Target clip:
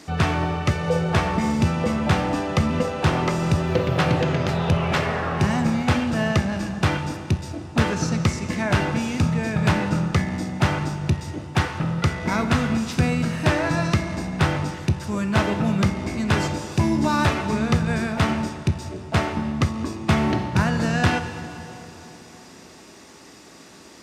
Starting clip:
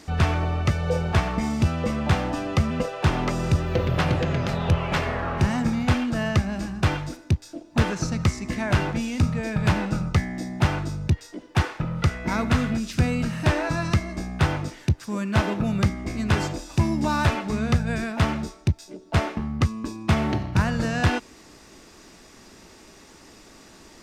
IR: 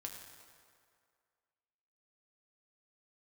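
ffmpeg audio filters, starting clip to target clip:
-filter_complex "[0:a]highpass=97,asplit=2[s0][s1];[1:a]atrim=start_sample=2205,asetrate=24255,aresample=44100[s2];[s1][s2]afir=irnorm=-1:irlink=0,volume=0.75[s3];[s0][s3]amix=inputs=2:normalize=0,volume=0.841"

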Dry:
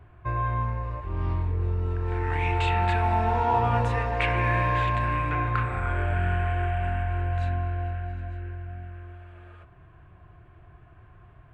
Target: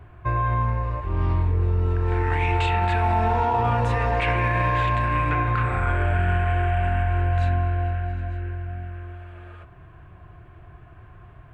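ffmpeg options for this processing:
-af "alimiter=limit=0.112:level=0:latency=1:release=37,volume=1.88"

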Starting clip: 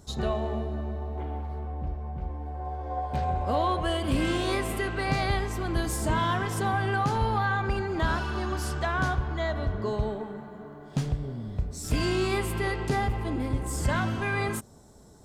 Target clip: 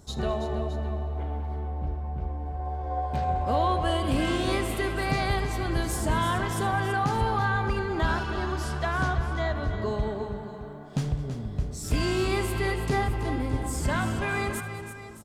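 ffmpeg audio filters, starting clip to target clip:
-filter_complex "[0:a]asettb=1/sr,asplit=3[s0][s1][s2];[s0]atrim=end=8.234[s3];[s1]atrim=start=8.23:end=9.51,asetpts=PTS-STARTPTS,afade=t=in:d=0.004:c=qsin,afade=t=out:st=1.276:d=0.004:c=qsin,highshelf=f=11000:g=-11[s4];[s2]atrim=start=9.506[s5];[s3][s4]acrossfade=d=0.004:c1=hsin:c2=qsin[s6];[s6][s5]acrossfade=d=0.004:c1=qsin:c2=hsin,asplit=2[s7][s8];[s8]aecho=0:1:76|207|329|617:0.119|0.112|0.316|0.188[s9];[s7][s9]amix=inputs=2:normalize=0"

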